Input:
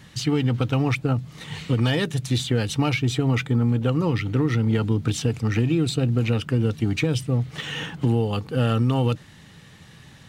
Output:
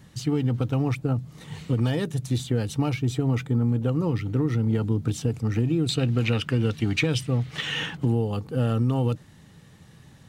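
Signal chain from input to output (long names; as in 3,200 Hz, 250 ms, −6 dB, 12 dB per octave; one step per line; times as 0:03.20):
parametric band 2,700 Hz −8 dB 2.5 octaves, from 0:05.89 +5 dB, from 0:07.97 −7.5 dB
level −2 dB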